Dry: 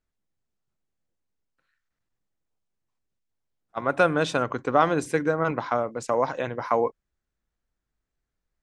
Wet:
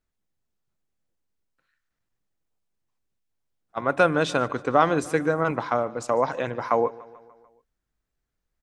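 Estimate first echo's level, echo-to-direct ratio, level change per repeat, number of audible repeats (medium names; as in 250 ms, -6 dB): -21.0 dB, -19.0 dB, -4.5 dB, 4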